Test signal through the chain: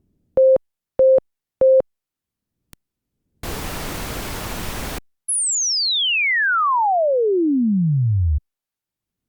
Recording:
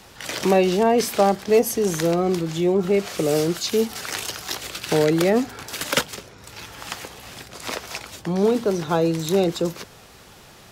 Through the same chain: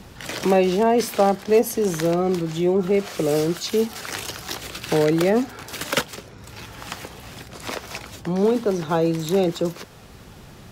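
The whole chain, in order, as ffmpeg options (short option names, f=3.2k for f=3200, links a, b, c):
-filter_complex "[0:a]equalizer=f=7.6k:t=o:w=2.8:g=-3,acrossover=split=290|3400[a][b][c];[a]acompressor=mode=upward:threshold=-35dB:ratio=2.5[d];[d][b][c]amix=inputs=3:normalize=0" -ar 48000 -c:a libopus -b:a 128k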